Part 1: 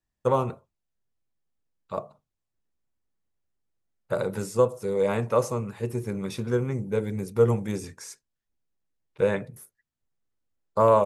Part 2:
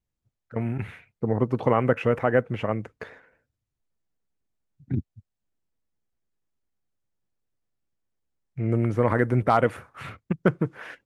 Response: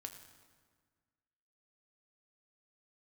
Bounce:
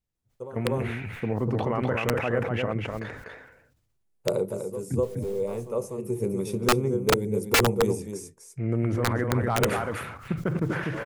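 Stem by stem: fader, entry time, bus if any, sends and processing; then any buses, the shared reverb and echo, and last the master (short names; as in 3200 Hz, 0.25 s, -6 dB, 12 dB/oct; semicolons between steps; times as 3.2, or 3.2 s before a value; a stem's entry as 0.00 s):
-2.0 dB, 0.15 s, no send, echo send -8 dB, fifteen-band EQ 160 Hz +3 dB, 400 Hz +9 dB, 1600 Hz -12 dB, 4000 Hz -6 dB, 10000 Hz +8 dB; auto duck -20 dB, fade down 0.40 s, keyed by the second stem
-2.5 dB, 0.00 s, no send, echo send -4 dB, limiter -13.5 dBFS, peak gain reduction 7 dB; sustainer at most 58 dB/s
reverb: off
echo: echo 0.246 s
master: wrapped overs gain 13.5 dB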